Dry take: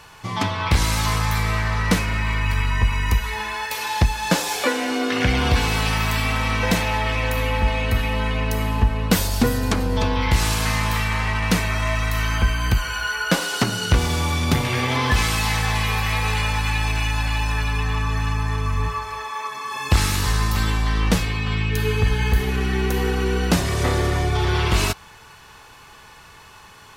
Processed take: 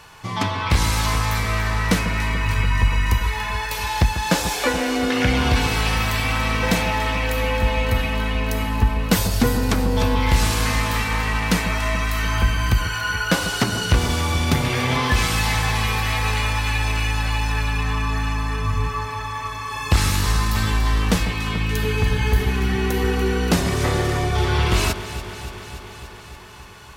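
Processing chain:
delay that swaps between a low-pass and a high-pass 144 ms, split 1,400 Hz, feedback 85%, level −11 dB

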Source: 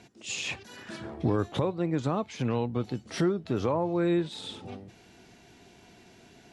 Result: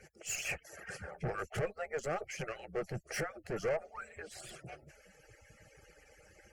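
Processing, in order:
harmonic-percussive split with one part muted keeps percussive
tube saturation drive 33 dB, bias 0.25
phaser with its sweep stopped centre 1,000 Hz, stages 6
level +6 dB

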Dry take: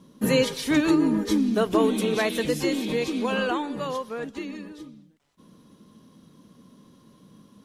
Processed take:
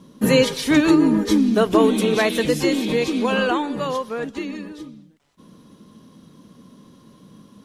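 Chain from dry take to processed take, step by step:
high-shelf EQ 12,000 Hz −4 dB
level +5.5 dB

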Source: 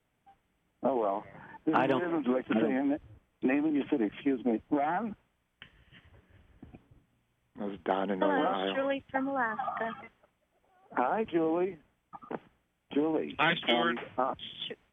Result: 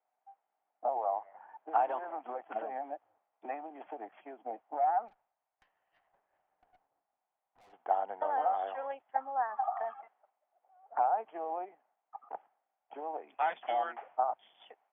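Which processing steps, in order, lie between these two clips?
four-pole ladder band-pass 820 Hz, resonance 70%
0:05.08–0:07.73: tube saturation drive 65 dB, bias 0.6
level +4 dB

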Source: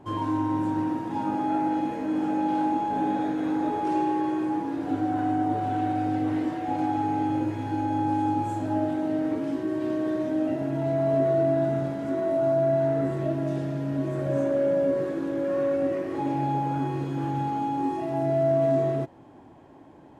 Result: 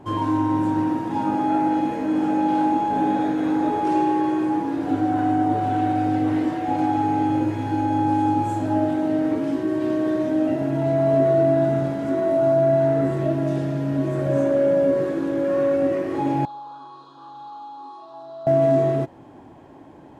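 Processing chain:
0:16.45–0:18.47: pair of resonant band-passes 2,100 Hz, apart 1.8 octaves
level +5 dB

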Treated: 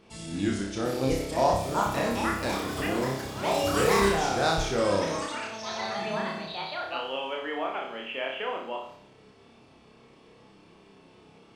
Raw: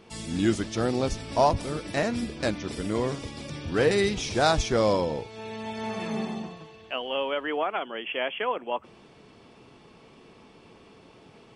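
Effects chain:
delay with pitch and tempo change per echo 778 ms, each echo +6 semitones, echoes 3
flutter between parallel walls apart 5.2 metres, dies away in 0.59 s
level −5.5 dB

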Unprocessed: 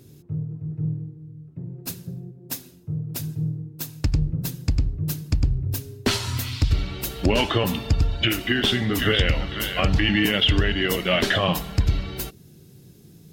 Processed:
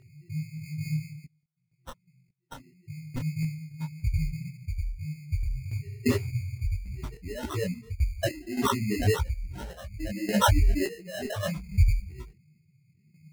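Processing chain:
expanding power law on the bin magnitudes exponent 3.7
0:01.24–0:02.53: first-order pre-emphasis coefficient 0.97
sample-and-hold tremolo, depth 90%
decimation without filtering 19×
0:03.71–0:04.24: hollow resonant body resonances 930/1,600/3,800 Hz, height 12 dB, ringing for 25 ms
micro pitch shift up and down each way 60 cents
level +5 dB

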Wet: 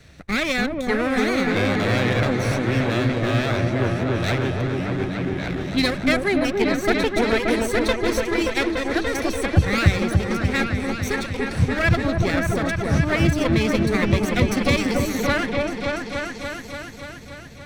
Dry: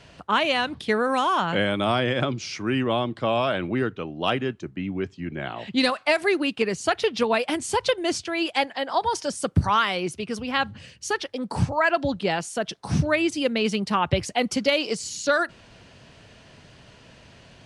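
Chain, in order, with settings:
lower of the sound and its delayed copy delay 0.51 ms
parametric band 66 Hz +8 dB 1.3 octaves
echo whose low-pass opens from repeat to repeat 289 ms, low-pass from 750 Hz, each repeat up 1 octave, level 0 dB

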